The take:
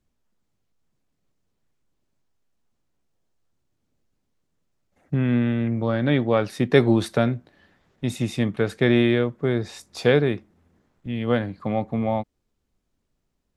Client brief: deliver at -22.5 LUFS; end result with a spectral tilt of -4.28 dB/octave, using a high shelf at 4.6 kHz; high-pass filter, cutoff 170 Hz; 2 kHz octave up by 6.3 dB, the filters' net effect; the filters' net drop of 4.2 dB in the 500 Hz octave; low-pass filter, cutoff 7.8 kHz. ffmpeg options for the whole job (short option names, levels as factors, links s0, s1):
-af "highpass=170,lowpass=7800,equalizer=f=500:t=o:g=-5.5,equalizer=f=2000:t=o:g=8.5,highshelf=f=4600:g=-4,volume=1.26"